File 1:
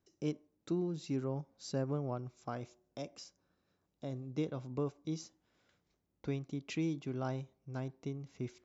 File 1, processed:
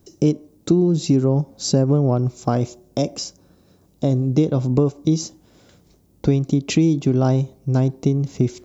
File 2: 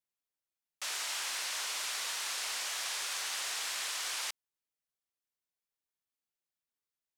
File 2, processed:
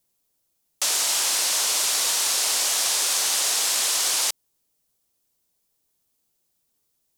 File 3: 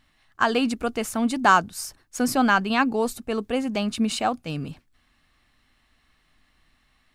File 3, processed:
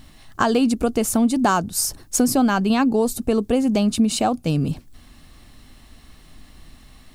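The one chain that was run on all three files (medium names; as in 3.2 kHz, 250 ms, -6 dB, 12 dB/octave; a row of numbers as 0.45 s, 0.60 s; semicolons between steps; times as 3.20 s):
peaking EQ 1.8 kHz -12 dB 2.4 oct; compression 3:1, threshold -41 dBFS; normalise loudness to -20 LUFS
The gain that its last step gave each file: +26.5 dB, +21.5 dB, +20.5 dB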